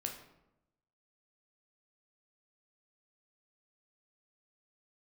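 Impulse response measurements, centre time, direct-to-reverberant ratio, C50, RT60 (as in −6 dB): 24 ms, 2.0 dB, 7.0 dB, 0.90 s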